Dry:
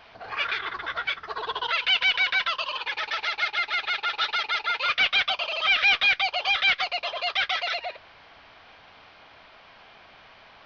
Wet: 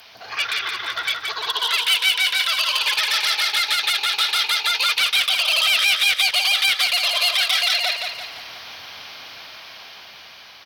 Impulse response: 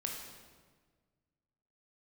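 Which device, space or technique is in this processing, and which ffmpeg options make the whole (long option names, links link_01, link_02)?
FM broadcast chain: -filter_complex "[0:a]highpass=76,dynaudnorm=framelen=920:gausssize=5:maxgain=8.5dB,acrossover=split=770|4000[link_01][link_02][link_03];[link_01]acompressor=threshold=-38dB:ratio=4[link_04];[link_02]acompressor=threshold=-22dB:ratio=4[link_05];[link_03]acompressor=threshold=-33dB:ratio=4[link_06];[link_04][link_05][link_06]amix=inputs=3:normalize=0,aemphasis=mode=production:type=75fm,alimiter=limit=-14dB:level=0:latency=1:release=145,asoftclip=type=hard:threshold=-17.5dB,lowpass=frequency=15000:width=0.5412,lowpass=frequency=15000:width=1.3066,aemphasis=mode=production:type=75fm,asettb=1/sr,asplit=3[link_07][link_08][link_09];[link_07]atrim=end=1.524[link_10];[link_08]atrim=start=1.52:end=2.31,asetpts=PTS-STARTPTS,afade=type=in:duration=0.004:curve=qsin,afade=type=out:start_time=0.786:duration=0.004:curve=qsin,highpass=frequency=230:width=0.5412,highpass=frequency=230:width=1.3066[link_11];[link_09]atrim=start=2.306[link_12];[link_10][link_11]acrossfade=duration=0.004:curve1=hsin:curve2=qsin[link_13];[link_13][link_12]acrossfade=duration=0.004:curve1=qsin:curve2=hsin,aecho=1:1:172|344|516|688|860|1032:0.562|0.253|0.114|0.0512|0.0231|0.0104"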